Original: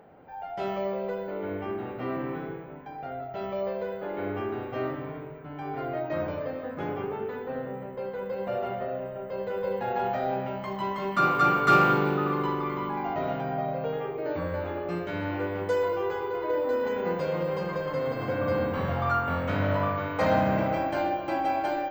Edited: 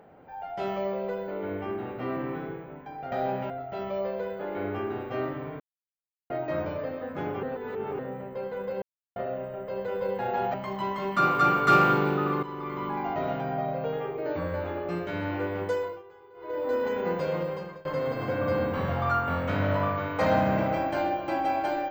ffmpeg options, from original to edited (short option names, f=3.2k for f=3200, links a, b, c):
-filter_complex "[0:a]asplit=14[a][b][c][d][e][f][g][h][i][j][k][l][m][n];[a]atrim=end=3.122[o];[b]atrim=start=10.158:end=10.542[p];[c]atrim=start=3.118:end=5.22,asetpts=PTS-STARTPTS,afade=t=out:st=2.098:d=0.004:c=hsin[q];[d]atrim=start=5.22:end=5.92,asetpts=PTS-STARTPTS,volume=0[r];[e]atrim=start=5.92:end=7.052,asetpts=PTS-STARTPTS,afade=t=in:d=0.004:c=hsin[s];[f]atrim=start=7.048:end=7.612,asetpts=PTS-STARTPTS,areverse[t];[g]atrim=start=7.608:end=8.44,asetpts=PTS-STARTPTS,afade=t=out:st=0.828:d=0.004:c=hsin[u];[h]atrim=start=8.44:end=8.78,asetpts=PTS-STARTPTS,volume=0[v];[i]atrim=start=8.78:end=10.162,asetpts=PTS-STARTPTS,afade=t=in:d=0.004:c=hsin[w];[j]atrim=start=10.538:end=12.43,asetpts=PTS-STARTPTS,afade=t=out:st=1.888:d=0.004:c=hsin:silence=0.237137[x];[k]atrim=start=12.43:end=16.03,asetpts=PTS-STARTPTS,afade=t=in:d=0.48:silence=0.237137,afade=t=out:st=3.21:d=0.39:silence=0.0891251[y];[l]atrim=start=16.03:end=16.35,asetpts=PTS-STARTPTS,volume=-21dB[z];[m]atrim=start=16.35:end=17.85,asetpts=PTS-STARTPTS,afade=t=in:d=0.39:silence=0.0891251,afade=t=out:st=1:d=0.5:silence=0.0668344[aa];[n]atrim=start=17.85,asetpts=PTS-STARTPTS,afade=t=in:d=0.004:c=hsin:silence=0.0668344[ab];[o][p]acrossfade=d=0.004:c1=hsin:c2=hsin[ac];[q][r][s]concat=n=3:v=0:a=1[ad];[ac][ad]acrossfade=d=0.004:c1=hsin:c2=hsin[ae];[ae][t]acrossfade=d=0.004:c1=hsin:c2=hsin[af];[u][v][w]concat=n=3:v=0:a=1[ag];[af][ag]acrossfade=d=0.004:c1=hsin:c2=hsin[ah];[x][y][z][aa][ab]concat=n=5:v=0:a=1[ai];[ah][ai]acrossfade=d=0.004:c1=hsin:c2=hsin"